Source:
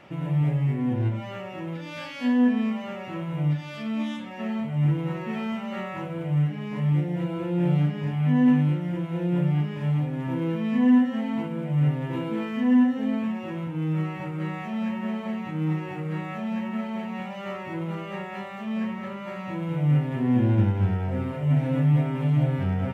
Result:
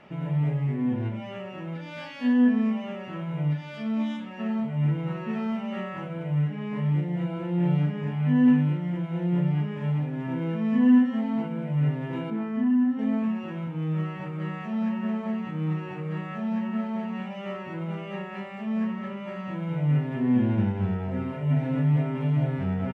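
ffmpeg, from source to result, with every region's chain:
ffmpeg -i in.wav -filter_complex "[0:a]asettb=1/sr,asplit=3[link_01][link_02][link_03];[link_01]atrim=end=12.304[link_04];[link_02]atrim=start=12.3:end=12.99,asetpts=PTS-STARTPTS,afade=type=in:duration=0.004:curve=qsin,afade=type=out:start_time=0.686:duration=0.004:curve=qsin,highshelf=frequency=2100:gain=-10.5,bandreject=frequency=500:width=7.7,acompressor=threshold=-20dB:ratio=3:attack=3.2:release=140:knee=1:detection=peak[link_05];[link_03]atrim=start=12.986[link_06];[link_04][link_05]acrossfade=duration=0.004:curve1=hsin:curve2=qsin[link_07];[link_07][link_06]acrossfade=duration=0.004:curve1=qsin:curve2=hsin,lowpass=frequency=3500:poles=1,aecho=1:1:4.7:0.4,volume=-1.5dB" out.wav

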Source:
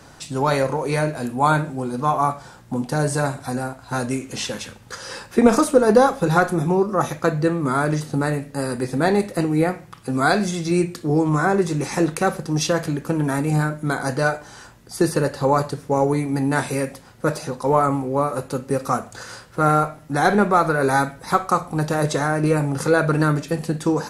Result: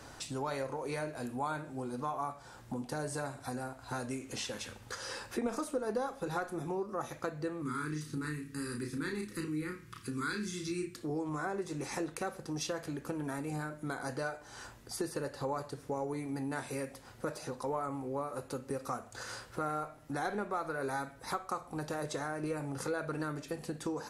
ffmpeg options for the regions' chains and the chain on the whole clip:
ffmpeg -i in.wav -filter_complex "[0:a]asettb=1/sr,asplit=3[link_01][link_02][link_03];[link_01]atrim=end=7.624[link_04];[link_02]atrim=start=7.62:end=10.96,asetpts=PTS-STARTPTS,afade=type=in:duration=0.004:curve=qsin,afade=type=out:start_time=3.336:duration=0.004:curve=qsin,asuperstop=centerf=670:order=4:qfactor=0.81,asplit=2[link_05][link_06];[link_06]adelay=33,volume=-4.5dB[link_07];[link_05][link_07]amix=inputs=2:normalize=0,atrim=end_sample=147294[link_08];[link_03]atrim=start=10.956[link_09];[link_04][link_08]acrossfade=duration=0.004:curve1=hsin:curve2=qsin[link_10];[link_10][link_09]acrossfade=duration=0.004:curve1=qsin:curve2=hsin,equalizer=frequency=170:width=3:gain=-8.5,acompressor=threshold=-35dB:ratio=2.5,volume=-4.5dB" out.wav

